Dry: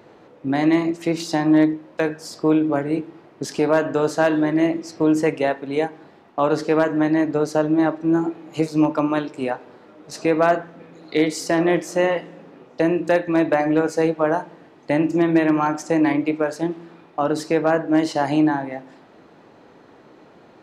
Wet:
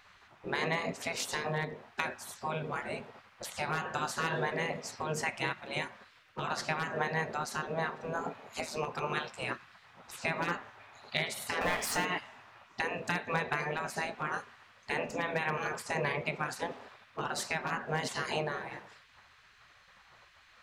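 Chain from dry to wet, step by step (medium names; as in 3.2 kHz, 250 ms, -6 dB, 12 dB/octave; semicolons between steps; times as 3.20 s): 11.61–12.05 s: power-law waveshaper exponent 0.7; compression, threshold -17 dBFS, peak gain reduction 6 dB; spectral gate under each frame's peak -15 dB weak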